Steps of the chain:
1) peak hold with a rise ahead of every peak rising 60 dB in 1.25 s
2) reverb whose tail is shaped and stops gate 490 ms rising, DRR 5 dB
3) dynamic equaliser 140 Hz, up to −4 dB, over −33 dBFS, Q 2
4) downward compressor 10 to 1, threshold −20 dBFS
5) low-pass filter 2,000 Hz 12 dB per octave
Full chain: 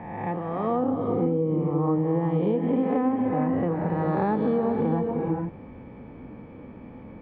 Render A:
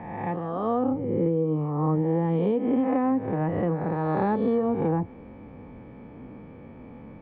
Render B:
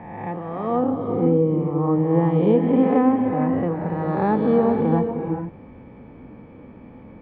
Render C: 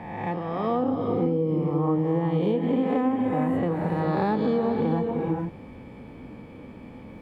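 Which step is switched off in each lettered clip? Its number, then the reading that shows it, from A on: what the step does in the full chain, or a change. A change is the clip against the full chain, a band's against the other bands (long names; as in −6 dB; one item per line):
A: 2, change in momentary loudness spread +1 LU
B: 4, average gain reduction 2.5 dB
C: 5, 2 kHz band +2.5 dB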